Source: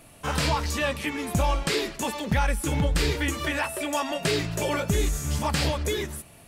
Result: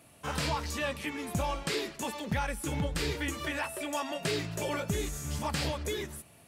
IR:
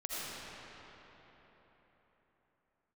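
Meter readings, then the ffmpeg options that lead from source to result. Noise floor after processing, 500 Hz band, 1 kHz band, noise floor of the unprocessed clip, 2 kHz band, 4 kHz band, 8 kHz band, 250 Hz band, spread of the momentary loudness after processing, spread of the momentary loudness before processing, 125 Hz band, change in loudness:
-58 dBFS, -6.5 dB, -6.5 dB, -51 dBFS, -6.5 dB, -6.5 dB, -6.5 dB, -6.5 dB, 4 LU, 4 LU, -8.0 dB, -7.0 dB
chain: -af "highpass=68,volume=-6.5dB"

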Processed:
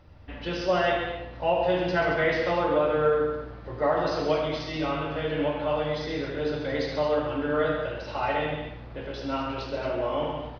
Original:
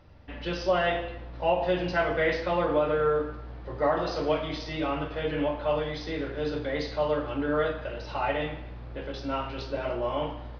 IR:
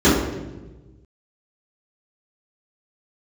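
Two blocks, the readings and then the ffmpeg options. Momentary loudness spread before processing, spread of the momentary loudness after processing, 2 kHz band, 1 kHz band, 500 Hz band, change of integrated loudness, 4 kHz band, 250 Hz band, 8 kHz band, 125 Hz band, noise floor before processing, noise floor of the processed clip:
11 LU, 10 LU, +2.0 dB, +1.5 dB, +2.0 dB, +1.5 dB, +1.5 dB, +1.5 dB, n/a, +1.5 dB, -41 dBFS, -42 dBFS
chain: -af "equalizer=f=79:w=1.7:g=3,aecho=1:1:44|77|129|137|225:0.126|0.398|0.251|0.355|0.335"

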